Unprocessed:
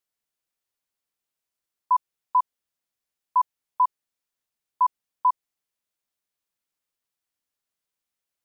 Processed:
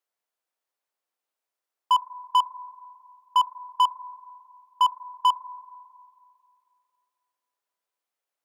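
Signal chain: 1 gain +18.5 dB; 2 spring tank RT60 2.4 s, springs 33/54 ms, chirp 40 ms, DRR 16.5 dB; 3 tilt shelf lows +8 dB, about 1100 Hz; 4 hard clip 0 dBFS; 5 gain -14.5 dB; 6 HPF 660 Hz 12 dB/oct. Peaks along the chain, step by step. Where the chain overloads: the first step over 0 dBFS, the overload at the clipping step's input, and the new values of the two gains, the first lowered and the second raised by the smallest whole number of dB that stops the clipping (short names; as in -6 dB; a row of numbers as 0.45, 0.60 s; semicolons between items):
+4.5, +5.0, +5.5, 0.0, -14.5, -11.5 dBFS; step 1, 5.5 dB; step 1 +12.5 dB, step 5 -8.5 dB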